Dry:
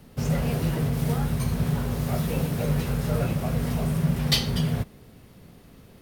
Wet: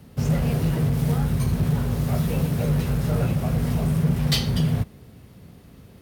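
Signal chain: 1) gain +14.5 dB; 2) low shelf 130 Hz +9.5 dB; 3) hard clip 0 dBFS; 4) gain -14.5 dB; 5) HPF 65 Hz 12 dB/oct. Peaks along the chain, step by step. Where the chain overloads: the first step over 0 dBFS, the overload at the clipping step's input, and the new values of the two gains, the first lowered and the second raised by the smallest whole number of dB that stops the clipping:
+7.0, +8.5, 0.0, -14.5, -10.0 dBFS; step 1, 8.5 dB; step 1 +5.5 dB, step 4 -5.5 dB

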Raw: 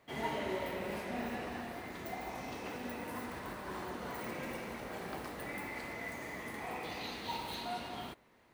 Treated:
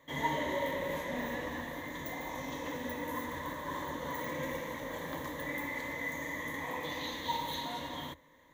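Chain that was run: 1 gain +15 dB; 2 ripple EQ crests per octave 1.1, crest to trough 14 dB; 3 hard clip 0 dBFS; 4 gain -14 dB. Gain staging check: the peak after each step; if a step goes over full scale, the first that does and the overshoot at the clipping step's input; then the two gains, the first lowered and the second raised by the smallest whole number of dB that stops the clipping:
-9.0, -4.5, -4.5, -18.5 dBFS; no overload

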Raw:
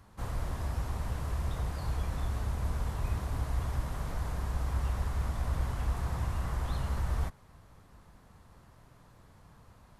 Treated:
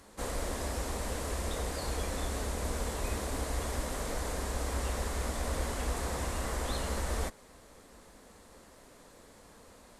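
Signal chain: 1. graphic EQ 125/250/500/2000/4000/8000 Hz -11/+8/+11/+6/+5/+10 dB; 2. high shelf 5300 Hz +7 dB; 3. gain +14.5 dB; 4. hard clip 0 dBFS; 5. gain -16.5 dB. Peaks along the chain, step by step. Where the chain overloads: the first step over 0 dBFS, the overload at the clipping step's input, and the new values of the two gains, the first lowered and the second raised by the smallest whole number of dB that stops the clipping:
-19.5, -19.0, -4.5, -4.5, -21.0 dBFS; no overload

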